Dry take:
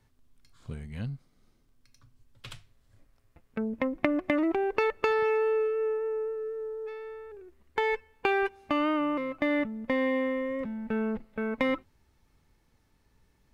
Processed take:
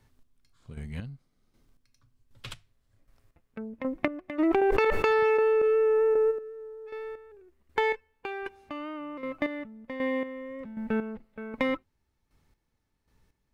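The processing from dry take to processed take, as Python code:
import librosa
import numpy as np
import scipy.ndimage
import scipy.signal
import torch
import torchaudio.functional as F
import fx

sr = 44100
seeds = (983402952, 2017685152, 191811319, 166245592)

y = fx.rider(x, sr, range_db=3, speed_s=0.5)
y = fx.chopper(y, sr, hz=1.3, depth_pct=65, duty_pct=30)
y = fx.env_flatten(y, sr, amount_pct=100, at=(4.38, 6.3), fade=0.02)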